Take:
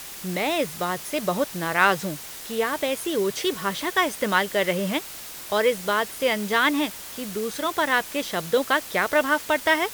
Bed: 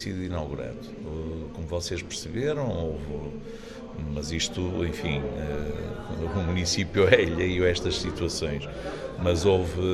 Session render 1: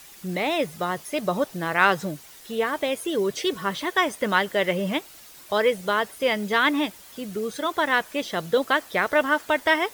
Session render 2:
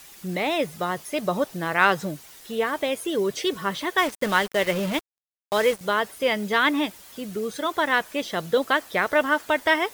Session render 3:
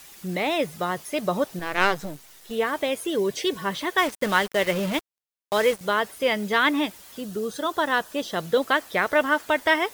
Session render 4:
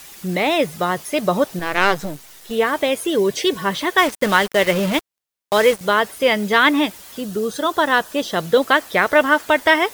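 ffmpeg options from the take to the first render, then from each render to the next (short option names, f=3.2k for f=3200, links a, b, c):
-af "afftdn=nr=10:nf=-38"
-filter_complex "[0:a]asettb=1/sr,asplit=3[a][b][c];[a]atrim=end=3.984[d];[b]atrim=start=3.98:end=5.81,asetpts=PTS-STARTPTS,afade=t=in:d=0.004:c=qsin,afade=t=out:st=1.826:d=0.004:c=qsin,acrusher=bits=4:mix=0:aa=0.5[e];[c]atrim=start=5.806[f];[d][e]acrossfade=d=0.004:c1=hsin:c2=qsin[g];[g][f]acrossfade=d=0.004:c1=qsin:c2=hsin"
-filter_complex "[0:a]asettb=1/sr,asplit=3[a][b][c];[a]atrim=end=1.594[d];[b]atrim=start=1.59:end=2.51,asetpts=PTS-STARTPTS,afade=t=in:d=0.004:c=qsin,afade=t=out:st=0.916:d=0.004:c=qsin,aeval=exprs='if(lt(val(0),0),0.251*val(0),val(0))':c=same[e];[c]atrim=start=2.506[f];[d][e]acrossfade=d=0.004:c1=hsin:c2=qsin[g];[g][f]acrossfade=d=0.004:c1=qsin:c2=hsin,asettb=1/sr,asplit=3[h][i][j];[h]atrim=end=3.174[k];[i]atrim=start=3.17:end=3.73,asetpts=PTS-STARTPTS,afade=t=in:d=0.004:c=qsin,afade=t=out:st=0.556:d=0.004:c=qsin,asuperstop=centerf=1300:order=4:qfactor=5.9[l];[j]atrim=start=3.726[m];[k][l]acrossfade=d=0.004:c1=hsin:c2=qsin[n];[n][m]acrossfade=d=0.004:c1=qsin:c2=hsin,asettb=1/sr,asplit=3[o][p][q];[o]atrim=end=7.214[r];[p]atrim=start=7.21:end=8.36,asetpts=PTS-STARTPTS,afade=t=in:d=0.004:c=qsin,afade=t=out:st=1.146:d=0.004:c=qsin,equalizer=f=2.2k:w=4.1:g=-11[s];[q]atrim=start=8.356[t];[r][s]acrossfade=d=0.004:c1=hsin:c2=qsin[u];[u][t]acrossfade=d=0.004:c1=qsin:c2=hsin"
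-af "volume=6.5dB,alimiter=limit=-1dB:level=0:latency=1"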